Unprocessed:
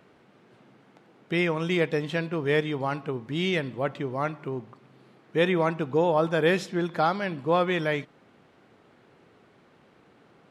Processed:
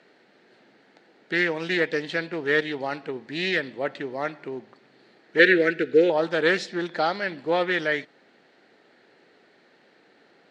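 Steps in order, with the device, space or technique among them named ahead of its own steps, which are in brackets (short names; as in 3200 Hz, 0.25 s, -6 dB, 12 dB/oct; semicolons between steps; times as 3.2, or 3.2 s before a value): full-range speaker at full volume (Doppler distortion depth 0.16 ms; speaker cabinet 280–8400 Hz, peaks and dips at 1100 Hz -9 dB, 1800 Hz +7 dB, 4300 Hz +9 dB); 5.39–6.1 EQ curve 220 Hz 0 dB, 450 Hz +9 dB, 1000 Hz -25 dB, 1500 Hz +9 dB, 5300 Hz 0 dB; gain +1 dB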